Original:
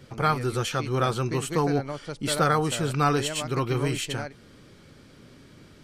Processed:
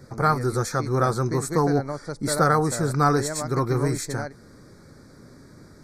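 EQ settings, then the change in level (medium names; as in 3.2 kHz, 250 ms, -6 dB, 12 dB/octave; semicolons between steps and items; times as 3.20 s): Butterworth band-stop 2.9 kHz, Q 1.2; +3.0 dB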